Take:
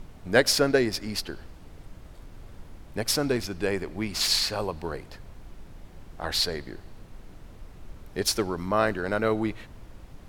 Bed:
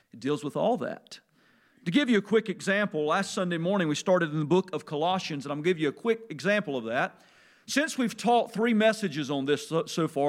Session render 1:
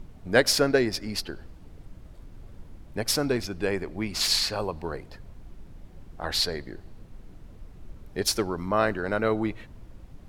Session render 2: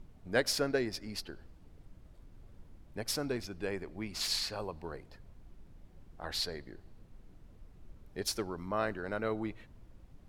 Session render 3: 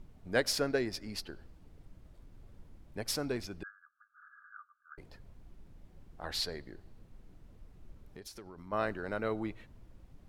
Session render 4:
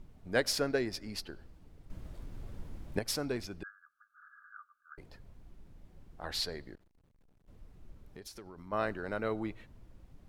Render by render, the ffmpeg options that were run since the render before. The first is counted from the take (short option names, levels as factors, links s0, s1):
-af "afftdn=nr=6:nf=-48"
-af "volume=0.335"
-filter_complex "[0:a]asettb=1/sr,asplit=3[s0][s1][s2];[s0]atrim=end=3.634[s3];[s1]atrim=start=3.63:end=4.98,asetpts=PTS-STARTPTS,afade=t=in:d=0.004:c=qsin,afade=t=out:st=1.346:d=0.004:c=qsin,asuperpass=centerf=1400:order=20:qfactor=2.8[s4];[s2]atrim=start=4.976[s5];[s3][s4]acrossfade=d=0.004:c1=hsin:c2=qsin[s6];[s6][s5]acrossfade=d=0.004:c1=qsin:c2=hsin,asplit=3[s7][s8][s9];[s7]afade=t=out:st=8.03:d=0.02[s10];[s8]acompressor=threshold=0.00631:ratio=10:attack=3.2:release=140:knee=1:detection=peak,afade=t=in:st=8.03:d=0.02,afade=t=out:st=8.71:d=0.02[s11];[s9]afade=t=in:st=8.71:d=0.02[s12];[s10][s11][s12]amix=inputs=3:normalize=0"
-filter_complex "[0:a]asettb=1/sr,asplit=3[s0][s1][s2];[s0]atrim=end=6.754[s3];[s1]atrim=start=6.75:end=7.48,asetpts=PTS-STARTPTS,afade=t=in:d=0.004:c=qsin,afade=t=out:st=0.726:d=0.004:c=qsin,aeval=exprs='(tanh(2000*val(0)+0.65)-tanh(0.65))/2000':c=same[s4];[s2]atrim=start=7.476[s5];[s3][s4]acrossfade=d=0.004:c1=hsin:c2=qsin[s6];[s6][s5]acrossfade=d=0.004:c1=qsin:c2=hsin,asplit=3[s7][s8][s9];[s7]atrim=end=1.902[s10];[s8]atrim=start=1.898:end=2.992,asetpts=PTS-STARTPTS,volume=3.16[s11];[s9]atrim=start=2.988[s12];[s10][s11]acrossfade=d=0.004:c1=hsin:c2=hsin[s13];[s13][s12]acrossfade=d=0.004:c1=hsin:c2=hsin"